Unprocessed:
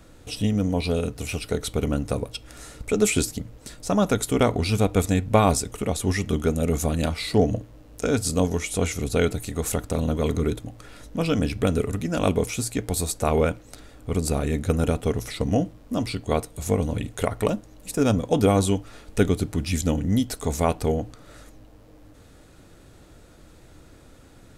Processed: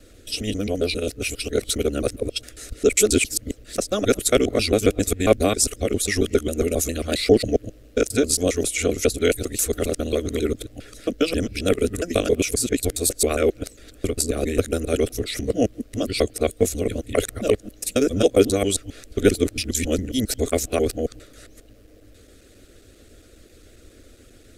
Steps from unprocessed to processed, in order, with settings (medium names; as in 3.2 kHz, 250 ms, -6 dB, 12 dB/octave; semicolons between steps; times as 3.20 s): time reversed locally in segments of 135 ms; static phaser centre 380 Hz, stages 4; harmonic-percussive split percussive +9 dB; trim -1.5 dB